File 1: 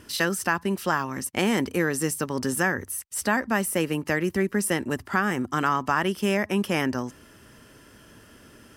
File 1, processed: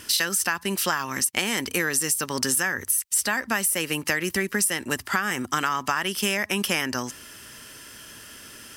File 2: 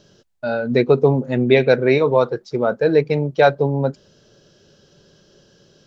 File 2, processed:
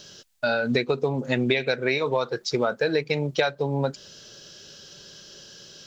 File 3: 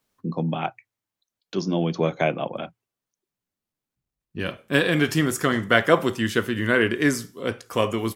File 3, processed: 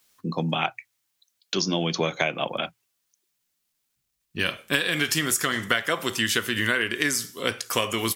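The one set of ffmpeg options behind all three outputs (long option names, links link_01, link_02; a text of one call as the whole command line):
ffmpeg -i in.wav -af "tiltshelf=frequency=1400:gain=-8,acompressor=threshold=-26dB:ratio=12,volume=6.5dB" out.wav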